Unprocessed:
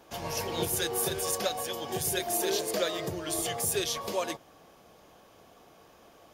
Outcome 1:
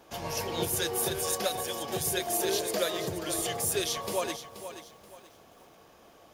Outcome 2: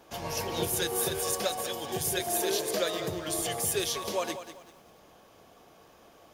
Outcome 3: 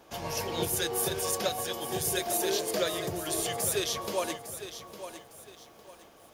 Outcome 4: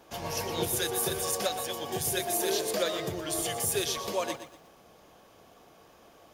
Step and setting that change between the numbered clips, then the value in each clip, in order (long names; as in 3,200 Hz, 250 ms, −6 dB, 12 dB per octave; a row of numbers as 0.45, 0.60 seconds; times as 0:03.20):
feedback echo at a low word length, delay time: 479, 195, 856, 120 milliseconds